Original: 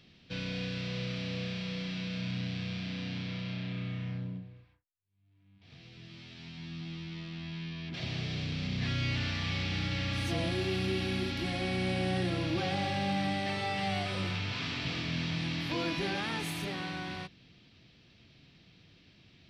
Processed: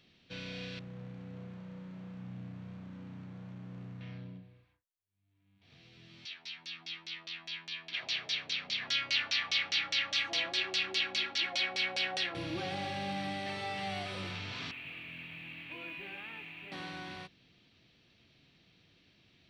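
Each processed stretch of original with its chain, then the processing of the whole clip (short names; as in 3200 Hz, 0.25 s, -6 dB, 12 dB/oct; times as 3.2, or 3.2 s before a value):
0.79–4.01 band-pass 140 Hz, Q 0.57 + sample gate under -45.5 dBFS + air absorption 170 m
6.25–12.35 weighting filter ITU-R 468 + LFO low-pass saw down 4.9 Hz 580–6600 Hz
14.71–16.72 ladder low-pass 2800 Hz, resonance 70% + modulation noise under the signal 33 dB
whole clip: tone controls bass -5 dB, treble 0 dB; notch 5000 Hz, Q 14; gain -4 dB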